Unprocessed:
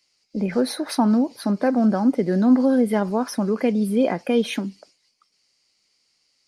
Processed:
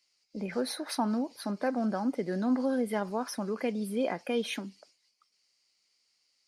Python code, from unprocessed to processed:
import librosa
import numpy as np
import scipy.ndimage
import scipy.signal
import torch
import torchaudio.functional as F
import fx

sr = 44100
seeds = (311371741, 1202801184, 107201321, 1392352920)

y = fx.low_shelf(x, sr, hz=450.0, db=-8.0)
y = F.gain(torch.from_numpy(y), -6.0).numpy()